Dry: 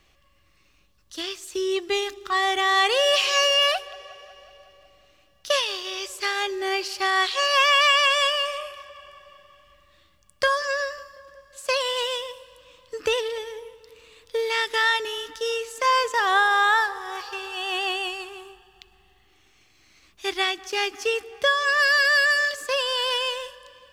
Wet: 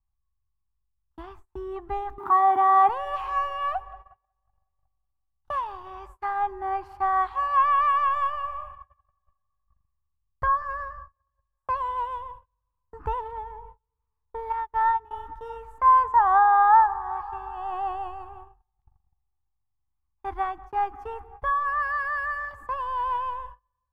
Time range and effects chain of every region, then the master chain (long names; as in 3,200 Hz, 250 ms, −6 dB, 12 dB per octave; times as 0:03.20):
0:02.18–0:02.89: converter with a step at zero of −30 dBFS + high-pass filter 230 Hz + hollow resonant body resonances 290/930 Hz, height 9 dB, ringing for 20 ms
0:14.52–0:15.11: low-shelf EQ 330 Hz +5 dB + expander for the loud parts 2.5 to 1, over −42 dBFS
whole clip: RIAA equalisation playback; noise gate −39 dBFS, range −31 dB; drawn EQ curve 100 Hz 0 dB, 570 Hz −18 dB, 860 Hz +10 dB, 2,800 Hz −23 dB, 5,500 Hz −29 dB, 14,000 Hz −6 dB